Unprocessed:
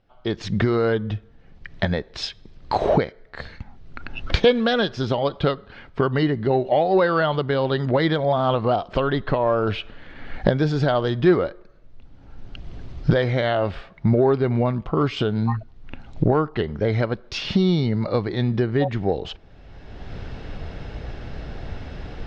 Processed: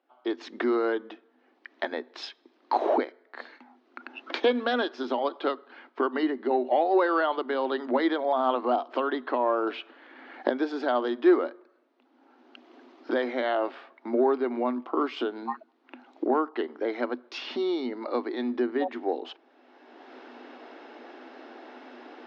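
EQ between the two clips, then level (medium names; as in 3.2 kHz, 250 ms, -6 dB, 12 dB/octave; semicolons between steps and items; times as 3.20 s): rippled Chebyshev high-pass 240 Hz, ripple 6 dB; distance through air 88 m; -1.0 dB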